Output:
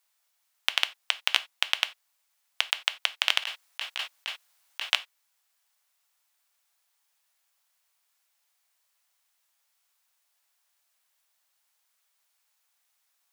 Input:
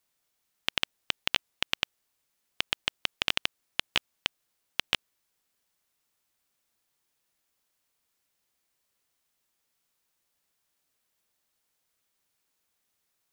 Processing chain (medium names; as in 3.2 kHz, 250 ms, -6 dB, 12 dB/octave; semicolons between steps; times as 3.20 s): gated-style reverb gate 110 ms falling, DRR 11 dB; 3.42–4.93 s: compressor with a negative ratio -36 dBFS, ratio -1; high-pass 670 Hz 24 dB/octave; trim +3.5 dB